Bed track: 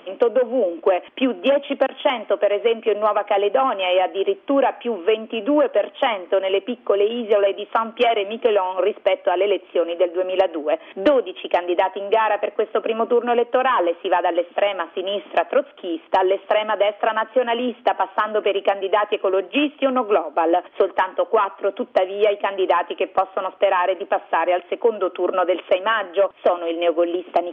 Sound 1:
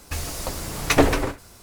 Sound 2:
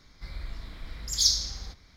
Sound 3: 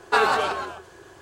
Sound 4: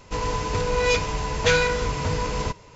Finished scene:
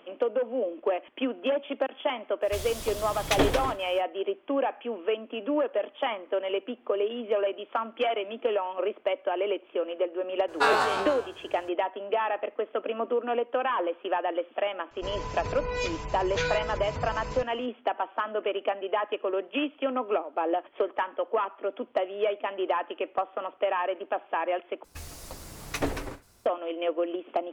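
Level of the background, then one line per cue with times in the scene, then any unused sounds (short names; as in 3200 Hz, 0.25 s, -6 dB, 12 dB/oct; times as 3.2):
bed track -9.5 dB
2.41 add 1 -7.5 dB, fades 0.05 s + bell 3300 Hz +10.5 dB 0.26 oct
10.48 add 3 -4.5 dB + spectral trails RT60 0.39 s
14.91 add 4 -9.5 dB + spectral gate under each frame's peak -30 dB strong
24.84 replace with 1 -12.5 dB
not used: 2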